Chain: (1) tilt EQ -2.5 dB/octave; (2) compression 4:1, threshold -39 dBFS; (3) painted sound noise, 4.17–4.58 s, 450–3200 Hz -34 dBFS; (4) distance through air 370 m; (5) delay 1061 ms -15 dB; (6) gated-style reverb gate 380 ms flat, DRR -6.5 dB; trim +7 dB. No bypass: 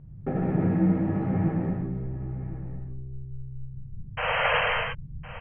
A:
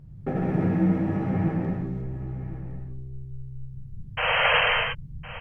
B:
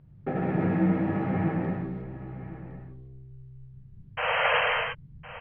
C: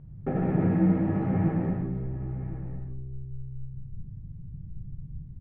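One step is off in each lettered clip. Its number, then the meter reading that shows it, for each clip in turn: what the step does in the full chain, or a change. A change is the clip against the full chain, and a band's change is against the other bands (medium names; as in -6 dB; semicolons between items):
4, 2 kHz band +3.0 dB; 1, 125 Hz band -3.5 dB; 3, 2 kHz band -17.0 dB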